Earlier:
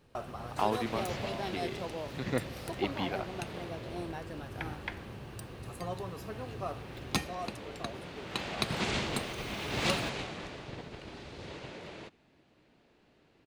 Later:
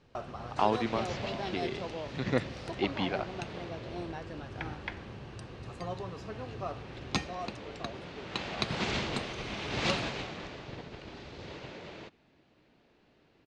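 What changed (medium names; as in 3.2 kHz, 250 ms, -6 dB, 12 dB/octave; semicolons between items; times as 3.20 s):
speech +3.0 dB; master: add low-pass 6.7 kHz 24 dB/octave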